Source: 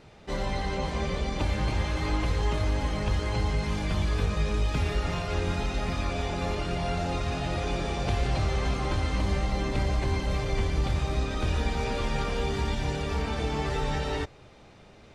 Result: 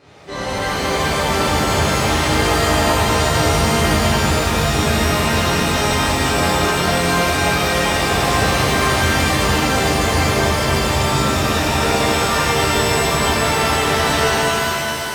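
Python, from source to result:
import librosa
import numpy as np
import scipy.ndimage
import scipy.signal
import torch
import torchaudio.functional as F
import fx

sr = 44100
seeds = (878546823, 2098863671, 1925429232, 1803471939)

y = scipy.signal.sosfilt(scipy.signal.butter(2, 72.0, 'highpass', fs=sr, output='sos'), x)
y = fx.bass_treble(y, sr, bass_db=-6, treble_db=-1)
y = fx.rev_shimmer(y, sr, seeds[0], rt60_s=3.1, semitones=7, shimmer_db=-2, drr_db=-11.0)
y = y * 10.0 ** (2.0 / 20.0)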